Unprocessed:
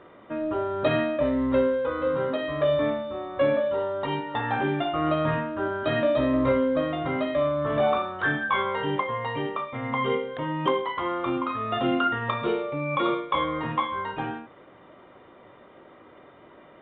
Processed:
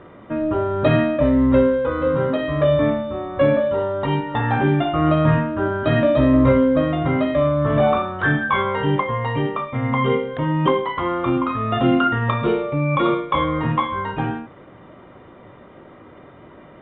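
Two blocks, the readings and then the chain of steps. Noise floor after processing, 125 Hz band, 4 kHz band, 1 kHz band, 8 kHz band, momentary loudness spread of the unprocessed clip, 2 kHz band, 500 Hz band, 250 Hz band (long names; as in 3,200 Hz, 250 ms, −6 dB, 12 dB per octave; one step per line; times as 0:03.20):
−45 dBFS, +13.0 dB, +3.0 dB, +5.0 dB, can't be measured, 7 LU, +4.5 dB, +5.5 dB, +9.0 dB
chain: bass and treble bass +9 dB, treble −7 dB
level +5 dB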